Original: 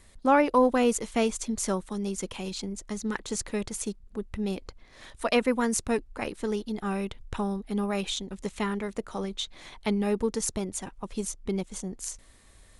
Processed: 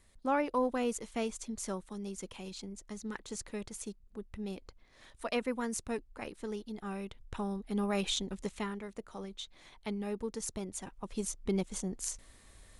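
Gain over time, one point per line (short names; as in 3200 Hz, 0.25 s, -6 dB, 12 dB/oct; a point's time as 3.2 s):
7.07 s -9.5 dB
8.25 s -0.5 dB
8.79 s -10.5 dB
10.24 s -10.5 dB
11.59 s -1.5 dB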